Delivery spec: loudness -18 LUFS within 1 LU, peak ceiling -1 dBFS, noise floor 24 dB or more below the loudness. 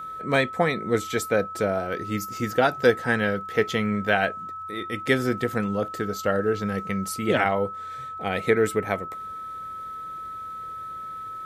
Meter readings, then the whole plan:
tick rate 29 per s; steady tone 1.3 kHz; tone level -33 dBFS; loudness -26.0 LUFS; peak level -4.5 dBFS; loudness target -18.0 LUFS
-> de-click; band-stop 1.3 kHz, Q 30; trim +8 dB; peak limiter -1 dBFS

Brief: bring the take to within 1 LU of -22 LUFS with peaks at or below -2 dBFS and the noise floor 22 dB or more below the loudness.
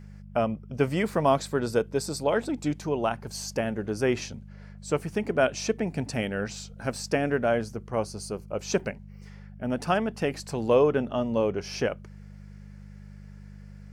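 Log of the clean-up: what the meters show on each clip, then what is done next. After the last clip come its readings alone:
hum 50 Hz; highest harmonic 200 Hz; hum level -42 dBFS; loudness -28.0 LUFS; peak level -9.5 dBFS; loudness target -22.0 LUFS
-> de-hum 50 Hz, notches 4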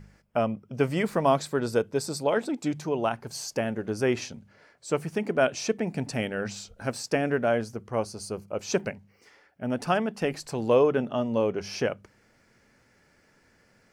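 hum not found; loudness -28.0 LUFS; peak level -9.5 dBFS; loudness target -22.0 LUFS
-> trim +6 dB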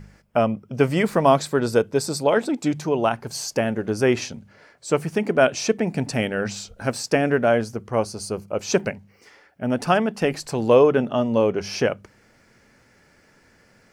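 loudness -22.0 LUFS; peak level -3.5 dBFS; noise floor -57 dBFS

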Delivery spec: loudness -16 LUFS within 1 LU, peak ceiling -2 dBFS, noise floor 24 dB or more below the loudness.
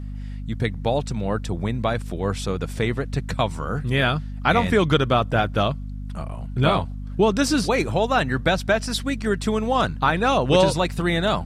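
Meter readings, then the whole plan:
hum 50 Hz; highest harmonic 250 Hz; hum level -29 dBFS; loudness -22.5 LUFS; peak level -4.0 dBFS; loudness target -16.0 LUFS
-> hum notches 50/100/150/200/250 Hz; trim +6.5 dB; peak limiter -2 dBFS

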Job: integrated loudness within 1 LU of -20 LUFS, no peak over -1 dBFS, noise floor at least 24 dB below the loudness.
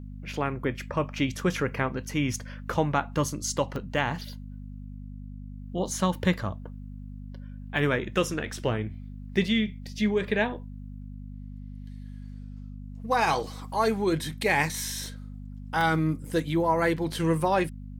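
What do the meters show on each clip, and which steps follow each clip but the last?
dropouts 4; longest dropout 1.1 ms; hum 50 Hz; highest harmonic 250 Hz; hum level -37 dBFS; loudness -28.0 LUFS; peak level -10.0 dBFS; loudness target -20.0 LUFS
-> interpolate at 3.76/8.26/15.06/15.81 s, 1.1 ms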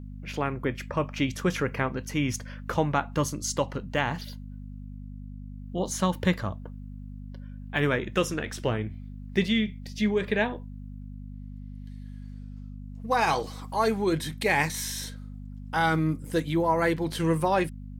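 dropouts 0; hum 50 Hz; highest harmonic 250 Hz; hum level -37 dBFS
-> de-hum 50 Hz, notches 5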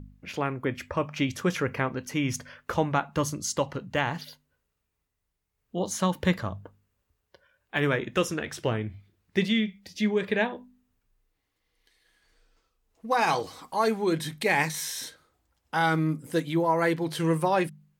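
hum not found; loudness -28.0 LUFS; peak level -10.0 dBFS; loudness target -20.0 LUFS
-> trim +8 dB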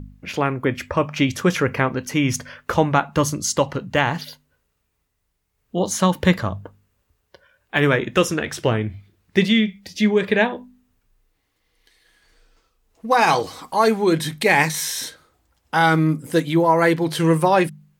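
loudness -20.0 LUFS; peak level -2.0 dBFS; noise floor -72 dBFS

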